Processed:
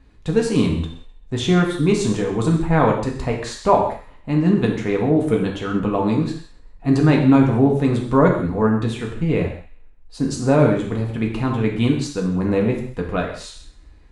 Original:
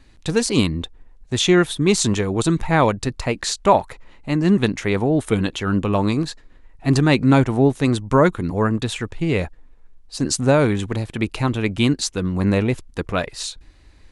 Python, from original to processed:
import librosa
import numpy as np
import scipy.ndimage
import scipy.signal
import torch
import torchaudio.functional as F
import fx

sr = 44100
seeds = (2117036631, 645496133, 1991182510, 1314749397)

y = fx.high_shelf(x, sr, hz=2100.0, db=-11.5)
y = fx.echo_wet_highpass(y, sr, ms=130, feedback_pct=33, hz=1400.0, wet_db=-17)
y = fx.rev_gated(y, sr, seeds[0], gate_ms=230, shape='falling', drr_db=-0.5)
y = y * librosa.db_to_amplitude(-1.5)